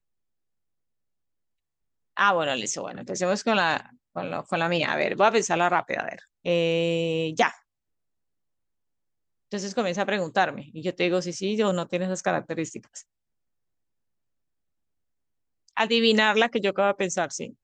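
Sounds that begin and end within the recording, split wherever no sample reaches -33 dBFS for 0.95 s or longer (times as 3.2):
2.17–7.51
9.52–12.99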